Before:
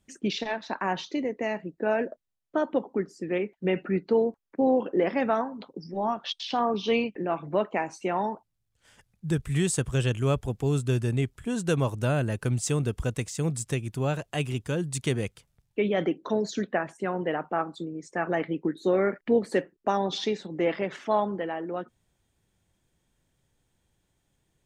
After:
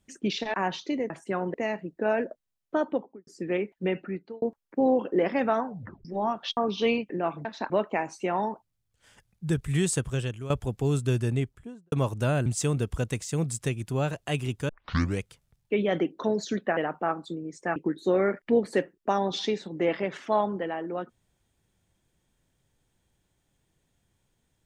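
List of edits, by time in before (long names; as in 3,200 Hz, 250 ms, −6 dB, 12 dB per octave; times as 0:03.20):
0:00.54–0:00.79: move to 0:07.51
0:02.63–0:03.08: fade out and dull
0:03.58–0:04.23: fade out
0:05.46: tape stop 0.40 s
0:06.38–0:06.63: remove
0:09.75–0:10.31: fade out, to −14.5 dB
0:11.07–0:11.73: fade out and dull
0:12.27–0:12.52: remove
0:14.75: tape start 0.51 s
0:16.83–0:17.27: move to 0:01.35
0:18.26–0:18.55: remove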